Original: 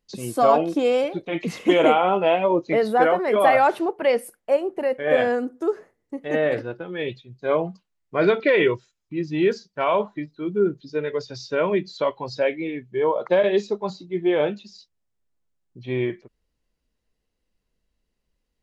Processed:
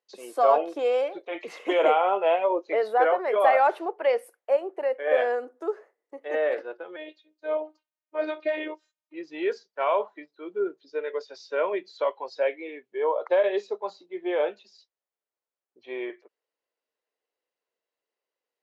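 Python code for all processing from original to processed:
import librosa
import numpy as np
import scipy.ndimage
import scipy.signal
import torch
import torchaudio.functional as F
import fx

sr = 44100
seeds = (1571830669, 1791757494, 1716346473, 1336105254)

y = fx.chain(x, sr, fx.dynamic_eq(hz=1700.0, q=0.79, threshold_db=-35.0, ratio=4.0, max_db=-5),
    fx.robotise(hz=308.0), at=(6.96, 9.14))
y = scipy.signal.sosfilt(scipy.signal.butter(4, 430.0, 'highpass', fs=sr, output='sos'), y)
y = fx.high_shelf(y, sr, hz=3400.0, db=-11.0)
y = F.gain(torch.from_numpy(y), -2.0).numpy()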